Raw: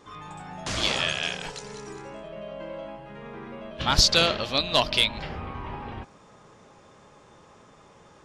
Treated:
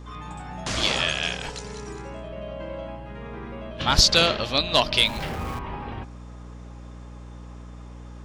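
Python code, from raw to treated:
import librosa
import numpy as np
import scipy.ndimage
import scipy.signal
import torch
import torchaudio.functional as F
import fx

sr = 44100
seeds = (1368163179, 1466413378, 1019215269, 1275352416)

y = fx.zero_step(x, sr, step_db=-36.5, at=(5.05, 5.59))
y = fx.add_hum(y, sr, base_hz=60, snr_db=13)
y = y * 10.0 ** (2.0 / 20.0)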